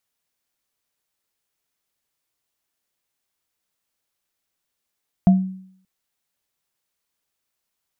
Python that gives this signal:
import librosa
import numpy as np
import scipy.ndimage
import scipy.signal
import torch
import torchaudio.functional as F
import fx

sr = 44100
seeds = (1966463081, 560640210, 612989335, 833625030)

y = fx.additive_free(sr, length_s=0.58, hz=188.0, level_db=-7.0, upper_db=(-12.0,), decay_s=0.63, upper_decays_s=(0.21,), upper_hz=(692.0,))